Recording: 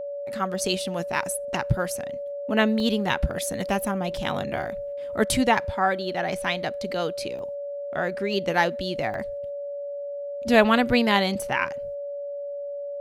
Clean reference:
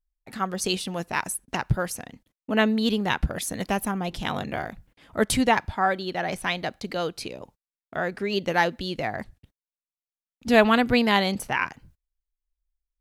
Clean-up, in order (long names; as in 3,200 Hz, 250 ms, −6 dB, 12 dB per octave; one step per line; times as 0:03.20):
notch filter 570 Hz, Q 30
repair the gap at 0:02.80/0:03.10/0:04.17/0:07.39/0:09.14, 1.4 ms